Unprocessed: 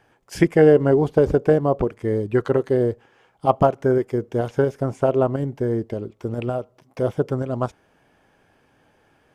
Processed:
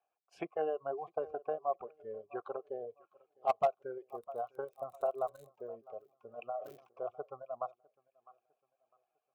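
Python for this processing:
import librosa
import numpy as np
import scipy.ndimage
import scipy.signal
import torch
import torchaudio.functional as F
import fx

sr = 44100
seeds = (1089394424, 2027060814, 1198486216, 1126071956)

y = fx.highpass(x, sr, hz=150.0, slope=6)
y = fx.dereverb_blind(y, sr, rt60_s=0.89)
y = fx.vowel_filter(y, sr, vowel='a')
y = fx.peak_eq(y, sr, hz=260.0, db=-10.0, octaves=0.24)
y = fx.dmg_crackle(y, sr, seeds[0], per_s=fx.line((4.07, 22.0), (5.49, 66.0)), level_db=-41.0, at=(4.07, 5.49), fade=0.02)
y = fx.dynamic_eq(y, sr, hz=630.0, q=0.8, threshold_db=-36.0, ratio=4.0, max_db=-4)
y = fx.echo_feedback(y, sr, ms=654, feedback_pct=43, wet_db=-17)
y = np.clip(10.0 ** (19.0 / 20.0) * y, -1.0, 1.0) / 10.0 ** (19.0 / 20.0)
y = fx.noise_reduce_blind(y, sr, reduce_db=12)
y = fx.sustainer(y, sr, db_per_s=99.0, at=(6.55, 7.02))
y = F.gain(torch.from_numpy(y), -2.0).numpy()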